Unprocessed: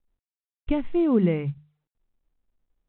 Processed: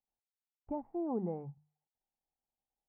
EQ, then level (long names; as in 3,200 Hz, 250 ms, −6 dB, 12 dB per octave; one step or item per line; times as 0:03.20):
high-pass filter 110 Hz 6 dB per octave
transistor ladder low-pass 860 Hz, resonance 80%
−3.5 dB